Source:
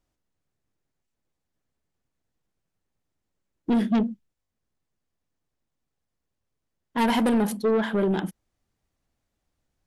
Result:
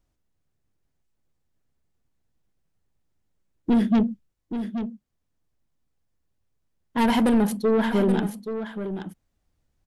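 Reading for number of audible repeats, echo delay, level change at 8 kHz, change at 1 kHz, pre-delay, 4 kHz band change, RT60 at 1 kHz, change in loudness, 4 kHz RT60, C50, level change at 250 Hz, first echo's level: 1, 0.827 s, n/a, +0.5 dB, none, +0.5 dB, none, +0.5 dB, none, none, +3.0 dB, -9.5 dB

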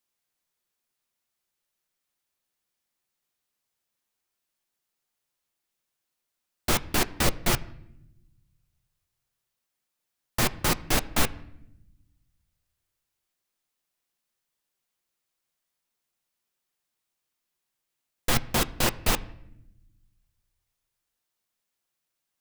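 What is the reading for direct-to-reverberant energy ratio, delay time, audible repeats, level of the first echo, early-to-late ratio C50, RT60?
10.5 dB, none, none, none, 19.5 dB, 0.80 s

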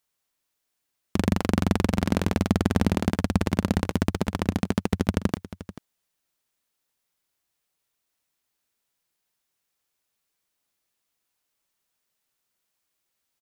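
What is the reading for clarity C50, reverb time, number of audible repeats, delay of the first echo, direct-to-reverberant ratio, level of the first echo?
none, none, 1, 0.438 s, none, -15.5 dB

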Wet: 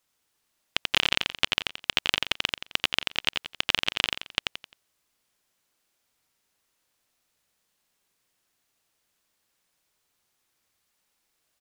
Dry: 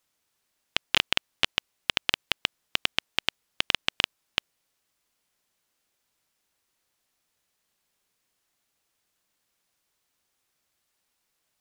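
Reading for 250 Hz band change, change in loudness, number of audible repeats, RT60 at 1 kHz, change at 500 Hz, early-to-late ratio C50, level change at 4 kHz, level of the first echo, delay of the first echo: +1.5 dB, +1.5 dB, 4, none, +1.5 dB, none, +1.5 dB, -4.0 dB, 87 ms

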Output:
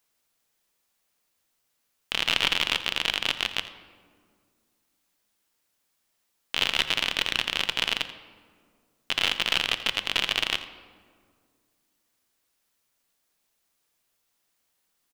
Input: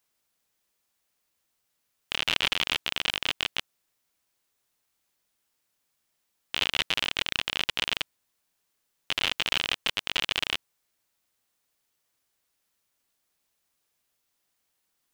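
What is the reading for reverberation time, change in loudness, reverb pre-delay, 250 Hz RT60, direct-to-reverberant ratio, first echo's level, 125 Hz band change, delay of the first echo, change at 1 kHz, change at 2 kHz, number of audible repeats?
2.0 s, +2.5 dB, 3 ms, 2.6 s, 10.0 dB, -15.5 dB, +1.5 dB, 85 ms, +2.5 dB, +2.5 dB, 1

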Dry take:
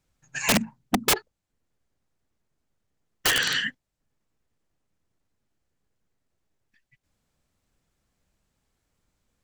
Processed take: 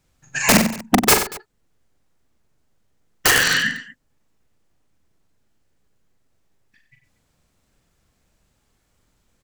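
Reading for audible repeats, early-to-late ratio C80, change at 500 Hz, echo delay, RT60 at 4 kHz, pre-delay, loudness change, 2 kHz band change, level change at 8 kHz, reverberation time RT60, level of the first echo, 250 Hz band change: 4, none, +8.5 dB, 41 ms, none, none, +7.0 dB, +8.0 dB, +8.5 dB, none, -6.5 dB, +9.0 dB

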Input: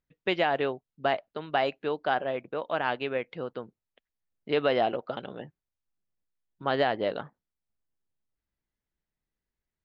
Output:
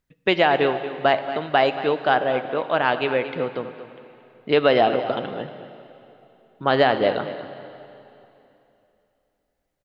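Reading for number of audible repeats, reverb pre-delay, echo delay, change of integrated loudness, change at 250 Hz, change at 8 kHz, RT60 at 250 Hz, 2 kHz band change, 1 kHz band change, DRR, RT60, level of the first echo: 1, 39 ms, 0.23 s, +8.0 dB, +8.5 dB, n/a, 3.0 s, +8.5 dB, +8.5 dB, 9.0 dB, 3.0 s, -13.5 dB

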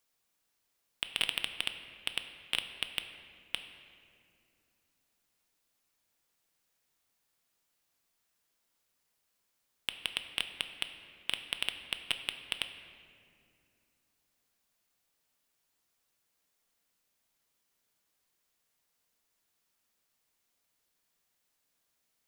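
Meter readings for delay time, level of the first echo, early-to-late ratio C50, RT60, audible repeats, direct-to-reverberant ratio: none, none, 9.0 dB, 2.4 s, none, 7.0 dB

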